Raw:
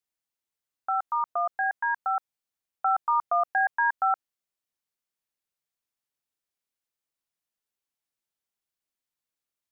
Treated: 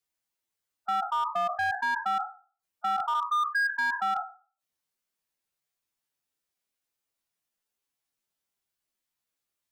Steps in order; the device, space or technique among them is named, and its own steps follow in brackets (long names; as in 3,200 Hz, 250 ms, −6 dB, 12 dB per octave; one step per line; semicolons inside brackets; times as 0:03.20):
peak hold with a decay on every bin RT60 0.37 s
0:03.14–0:03.99: elliptic band-stop filter 420–1,000 Hz
gate on every frequency bin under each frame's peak −10 dB strong
limiter into clipper (brickwall limiter −22.5 dBFS, peak gain reduction 6.5 dB; hard clipping −26 dBFS, distortion −17 dB)
level +3 dB